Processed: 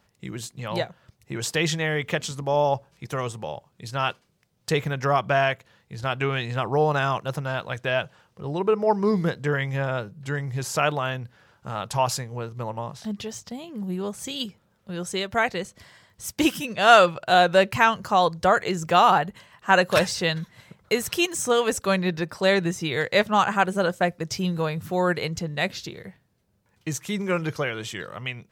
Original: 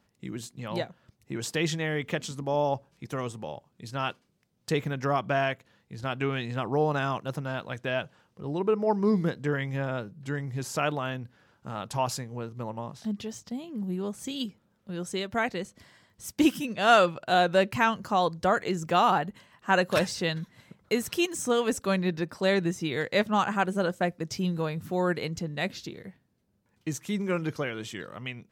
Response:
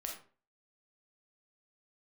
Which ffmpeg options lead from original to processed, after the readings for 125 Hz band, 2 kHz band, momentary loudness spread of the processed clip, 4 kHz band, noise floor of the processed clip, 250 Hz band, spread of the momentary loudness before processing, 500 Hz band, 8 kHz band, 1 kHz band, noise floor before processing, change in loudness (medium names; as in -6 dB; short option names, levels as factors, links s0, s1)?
+4.0 dB, +6.0 dB, 15 LU, +6.0 dB, -67 dBFS, +1.0 dB, 14 LU, +4.5 dB, +6.0 dB, +5.5 dB, -71 dBFS, +5.0 dB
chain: -af "equalizer=f=260:w=1.6:g=-8,volume=2"